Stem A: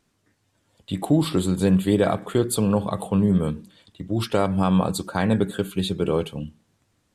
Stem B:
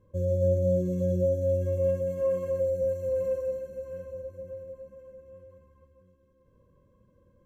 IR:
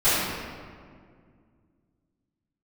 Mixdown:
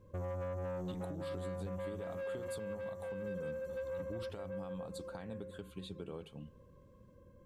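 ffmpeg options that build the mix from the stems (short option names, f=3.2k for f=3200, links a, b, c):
-filter_complex "[0:a]highshelf=f=10k:g=-8.5,acompressor=threshold=-22dB:ratio=6,volume=-16.5dB[a];[1:a]acompressor=threshold=-33dB:ratio=10,asoftclip=type=tanh:threshold=-39dB,volume=2.5dB[b];[a][b]amix=inputs=2:normalize=0,alimiter=level_in=9dB:limit=-24dB:level=0:latency=1:release=292,volume=-9dB"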